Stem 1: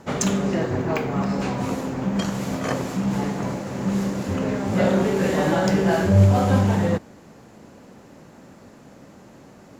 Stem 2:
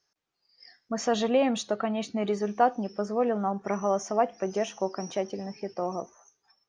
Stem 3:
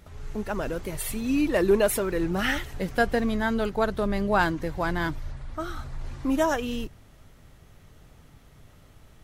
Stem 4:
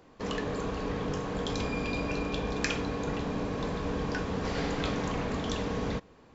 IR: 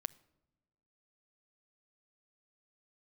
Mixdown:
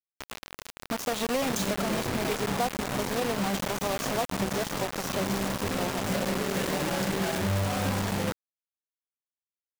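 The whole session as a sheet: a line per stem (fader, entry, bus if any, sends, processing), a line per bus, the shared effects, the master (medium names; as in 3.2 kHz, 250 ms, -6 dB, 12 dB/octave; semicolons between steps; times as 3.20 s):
-4.5 dB, 1.35 s, bus A, send -15.5 dB, none
+1.5 dB, 0.00 s, bus A, send -16 dB, none
-19.0 dB, 1.60 s, no bus, no send, static phaser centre 2.8 kHz, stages 8; random-step tremolo
-12.5 dB, 0.00 s, bus A, send -13.5 dB, Bessel low-pass 6.5 kHz, order 8; high-order bell 880 Hz +11 dB
bus A: 0.0 dB, compression 5:1, threshold -30 dBFS, peak gain reduction 14.5 dB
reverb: on, pre-delay 7 ms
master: upward compressor, threshold -33 dBFS; bit crusher 5-bit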